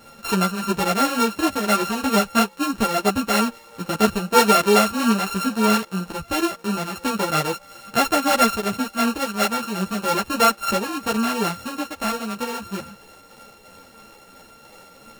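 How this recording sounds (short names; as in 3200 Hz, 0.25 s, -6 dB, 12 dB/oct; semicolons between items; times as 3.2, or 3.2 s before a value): a buzz of ramps at a fixed pitch in blocks of 32 samples; tremolo triangle 3 Hz, depth 35%; a shimmering, thickened sound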